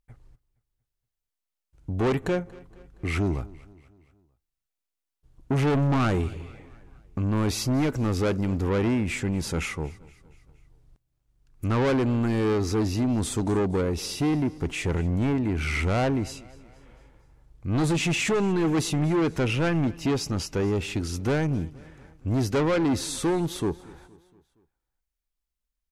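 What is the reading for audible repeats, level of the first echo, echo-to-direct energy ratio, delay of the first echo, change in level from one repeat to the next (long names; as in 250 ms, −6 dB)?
3, −22.0 dB, −20.5 dB, 234 ms, −5.5 dB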